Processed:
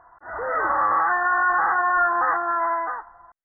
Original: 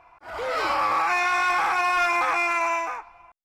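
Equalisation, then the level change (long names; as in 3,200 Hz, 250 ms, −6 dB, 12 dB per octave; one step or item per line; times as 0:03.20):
linear-phase brick-wall low-pass 2,000 Hz
parametric band 1,500 Hz +4.5 dB 1.1 octaves
0.0 dB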